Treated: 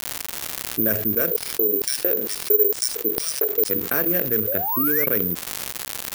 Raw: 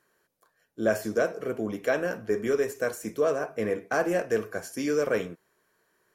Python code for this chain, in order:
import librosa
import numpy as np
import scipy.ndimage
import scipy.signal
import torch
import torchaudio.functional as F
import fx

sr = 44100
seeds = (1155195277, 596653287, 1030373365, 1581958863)

y = fx.wiener(x, sr, points=41)
y = fx.recorder_agc(y, sr, target_db=-22.0, rise_db_per_s=14.0, max_gain_db=30)
y = np.sign(y) * np.maximum(np.abs(y) - 10.0 ** (-56.5 / 20.0), 0.0)
y = fx.spec_paint(y, sr, seeds[0], shape='rise', start_s=4.47, length_s=0.59, low_hz=490.0, high_hz=2300.0, level_db=-34.0)
y = fx.peak_eq(y, sr, hz=730.0, db=-11.0, octaves=0.93)
y = fx.filter_lfo_highpass(y, sr, shape='square', hz=2.2, low_hz=420.0, high_hz=5200.0, q=5.6, at=(1.3, 3.69), fade=0.02)
y = fx.high_shelf(y, sr, hz=6200.0, db=10.0)
y = fx.env_lowpass(y, sr, base_hz=2000.0, full_db=-20.5)
y = fx.dmg_crackle(y, sr, seeds[1], per_s=310.0, level_db=-47.0)
y = (np.kron(y[::3], np.eye(3)[0]) * 3)[:len(y)]
y = fx.env_flatten(y, sr, amount_pct=70)
y = y * librosa.db_to_amplitude(-8.0)